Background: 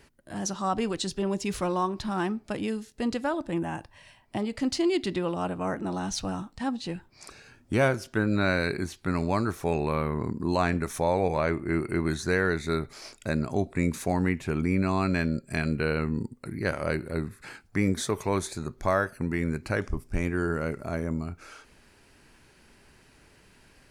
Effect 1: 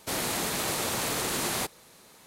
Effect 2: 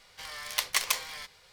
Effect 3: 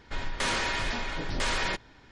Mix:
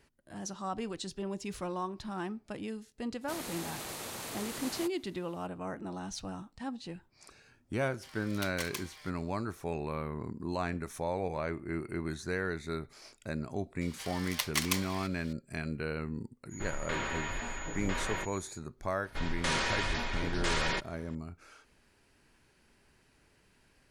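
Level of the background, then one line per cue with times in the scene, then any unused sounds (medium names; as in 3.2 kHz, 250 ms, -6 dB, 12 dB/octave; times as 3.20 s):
background -9 dB
3.21 s: add 1 -11.5 dB
7.84 s: add 2 -12.5 dB
13.81 s: add 2 -4 dB + tape noise reduction on one side only encoder only
16.49 s: add 3 -6 dB, fades 0.05 s + class-D stage that switches slowly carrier 6.8 kHz
19.04 s: add 3 -2.5 dB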